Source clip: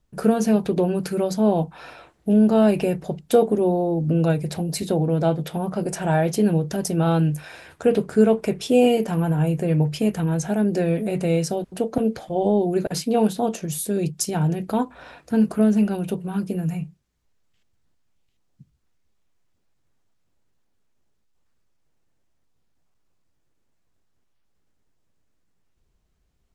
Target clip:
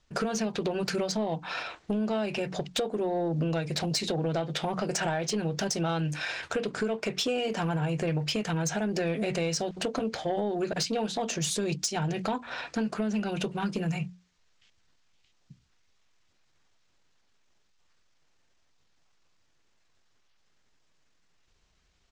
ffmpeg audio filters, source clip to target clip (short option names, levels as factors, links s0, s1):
-af "lowpass=f=6600:w=0.5412,lowpass=f=6600:w=1.3066,tiltshelf=f=850:g=-6.5,bandreject=f=60:t=h:w=6,bandreject=f=120:t=h:w=6,bandreject=f=180:t=h:w=6,bandreject=f=240:t=h:w=6,bandreject=f=300:t=h:w=6,acompressor=threshold=0.0355:ratio=16,atempo=1.2,asoftclip=type=tanh:threshold=0.0562,volume=1.78"